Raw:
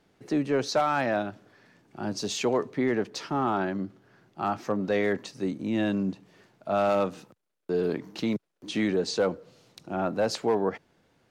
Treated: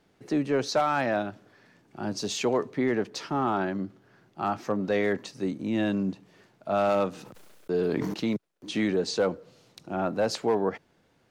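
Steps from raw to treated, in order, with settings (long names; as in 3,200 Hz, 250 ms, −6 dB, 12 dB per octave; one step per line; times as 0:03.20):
0:07.11–0:08.14: level that may fall only so fast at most 22 dB per second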